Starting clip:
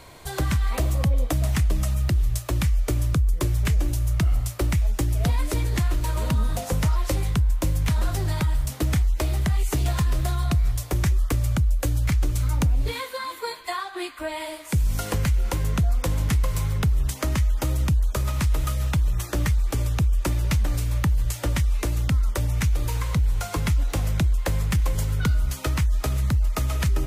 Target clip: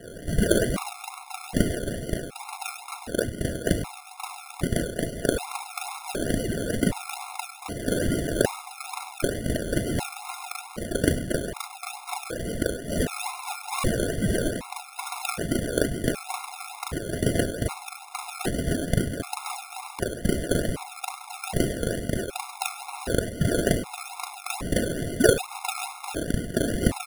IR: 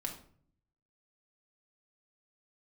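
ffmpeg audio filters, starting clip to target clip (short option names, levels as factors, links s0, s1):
-filter_complex "[0:a]highpass=f=1500:t=q:w=7.2,aecho=1:1:100|200|300|400|500|600:0.251|0.146|0.0845|0.049|0.0284|0.0165,asplit=2[s0][s1];[1:a]atrim=start_sample=2205,asetrate=31311,aresample=44100,adelay=38[s2];[s1][s2]afir=irnorm=-1:irlink=0,volume=1.12[s3];[s0][s3]amix=inputs=2:normalize=0,acrusher=samples=36:mix=1:aa=0.000001:lfo=1:lforange=21.6:lforate=2.3,equalizer=f=10000:w=5.4:g=14.5,afftfilt=real='re*gt(sin(2*PI*0.65*pts/sr)*(1-2*mod(floor(b*sr/1024/700),2)),0)':imag='im*gt(sin(2*PI*0.65*pts/sr)*(1-2*mod(floor(b*sr/1024/700),2)),0)':win_size=1024:overlap=0.75"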